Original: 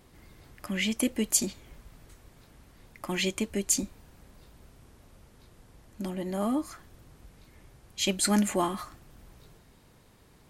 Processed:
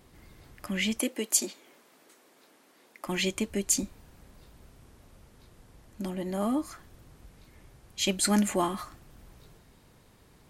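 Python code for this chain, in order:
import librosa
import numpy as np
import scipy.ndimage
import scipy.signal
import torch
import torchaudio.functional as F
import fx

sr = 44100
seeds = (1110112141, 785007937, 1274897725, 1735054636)

y = fx.highpass(x, sr, hz=270.0, slope=24, at=(0.99, 3.06))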